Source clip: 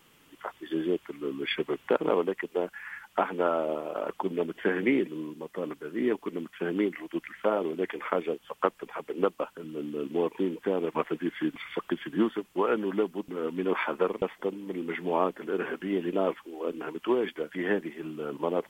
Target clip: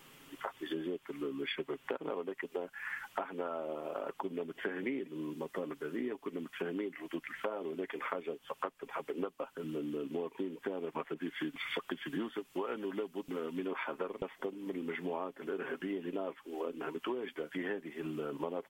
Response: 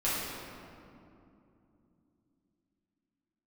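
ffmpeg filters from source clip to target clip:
-filter_complex "[0:a]equalizer=f=71:w=1.1:g=-4.5,aecho=1:1:7.4:0.35,acompressor=threshold=-38dB:ratio=6,asettb=1/sr,asplit=3[a][b][c];[a]atrim=end=11.144[d];[b]atrim=start=11.14:end=13.68,asetpts=PTS-STARTPTS,afade=t=in:d=0.004:c=qsin,afade=t=out:st=2.536:d=0.004:c=qsin,adynamicequalizer=threshold=0.00126:dfrequency=2000:dqfactor=0.7:tfrequency=2000:tqfactor=0.7:attack=5:release=100:ratio=0.375:range=2:mode=boostabove:tftype=highshelf[e];[c]atrim=start=13.676[f];[d][e]acrossfade=d=0.004:c1=hsin:c2=qsin[g];[g][f]acrossfade=d=0.004:c1=qsin:c2=hsin,volume=2.5dB"

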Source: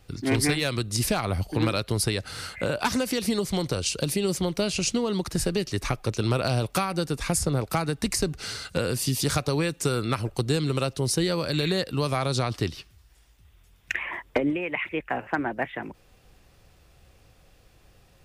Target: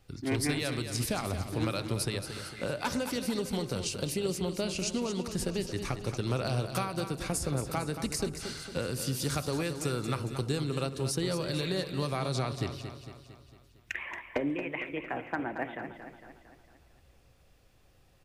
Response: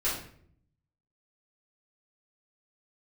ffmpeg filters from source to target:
-filter_complex "[0:a]aecho=1:1:227|454|681|908|1135|1362:0.335|0.181|0.0977|0.0527|0.0285|0.0154,asplit=2[a][b];[1:a]atrim=start_sample=2205,lowpass=1.4k[c];[b][c]afir=irnorm=-1:irlink=0,volume=-20dB[d];[a][d]amix=inputs=2:normalize=0,volume=-7.5dB"

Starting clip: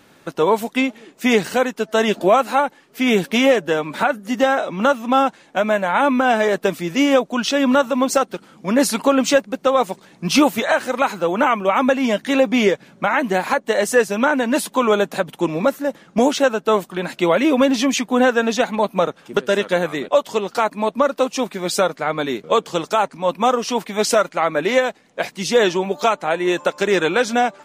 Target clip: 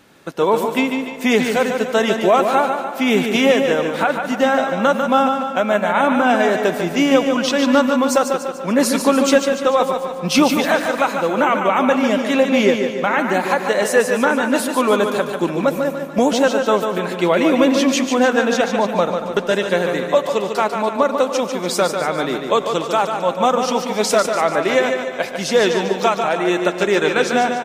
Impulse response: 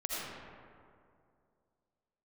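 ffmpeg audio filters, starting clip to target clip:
-filter_complex "[0:a]aecho=1:1:146|292|438|584|730|876:0.473|0.237|0.118|0.0591|0.0296|0.0148,asplit=2[a][b];[1:a]atrim=start_sample=2205,asetrate=37485,aresample=44100[c];[b][c]afir=irnorm=-1:irlink=0,volume=-17dB[d];[a][d]amix=inputs=2:normalize=0,volume=-1dB"

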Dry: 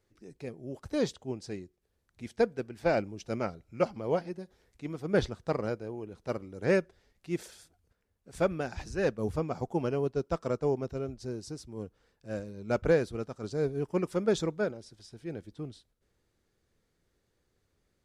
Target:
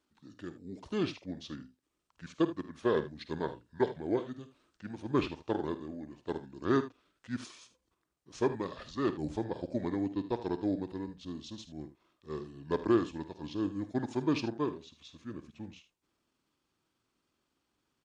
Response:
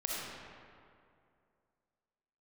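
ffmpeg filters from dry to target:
-af "highpass=f=390:p=1,asetrate=31183,aresample=44100,atempo=1.41421,aecho=1:1:51|78:0.188|0.188"

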